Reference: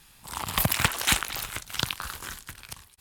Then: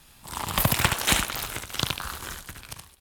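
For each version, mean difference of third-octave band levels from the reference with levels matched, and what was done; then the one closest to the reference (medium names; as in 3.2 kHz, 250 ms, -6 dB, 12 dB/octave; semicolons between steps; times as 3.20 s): 3.0 dB: delay 72 ms -6 dB; in parallel at -10.5 dB: sample-and-hold 17×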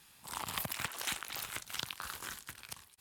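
4.5 dB: high-pass 160 Hz 6 dB/octave; compression 6:1, threshold -29 dBFS, peak gain reduction 11.5 dB; trim -5 dB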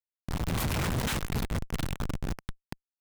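10.5 dB: Schmitt trigger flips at -27 dBFS; peaking EQ 150 Hz +5.5 dB 1.7 oct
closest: first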